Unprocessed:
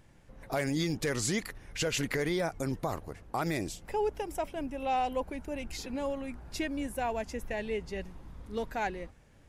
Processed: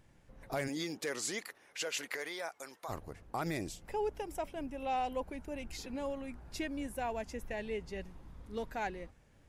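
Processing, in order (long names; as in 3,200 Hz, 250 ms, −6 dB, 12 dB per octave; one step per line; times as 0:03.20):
0:00.67–0:02.88: high-pass filter 260 Hz → 910 Hz 12 dB per octave
level −4.5 dB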